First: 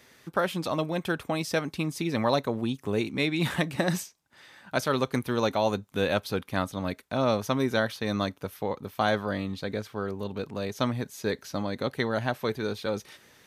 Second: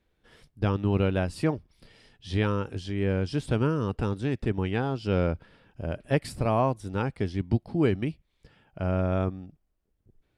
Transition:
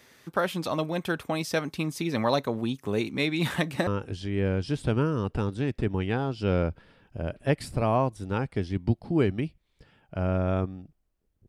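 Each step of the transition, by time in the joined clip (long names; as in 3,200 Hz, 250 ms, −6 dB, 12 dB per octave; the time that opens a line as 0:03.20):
first
0:03.87: continue with second from 0:02.51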